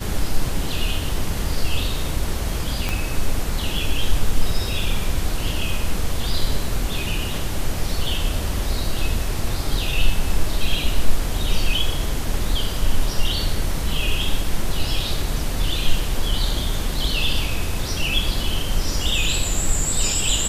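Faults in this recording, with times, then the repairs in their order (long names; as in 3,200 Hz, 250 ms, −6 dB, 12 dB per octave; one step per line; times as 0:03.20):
0:02.89: click −8 dBFS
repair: click removal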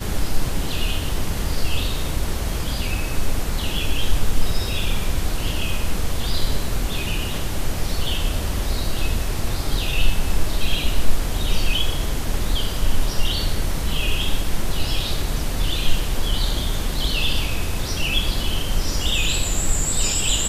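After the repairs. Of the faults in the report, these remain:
0:02.89: click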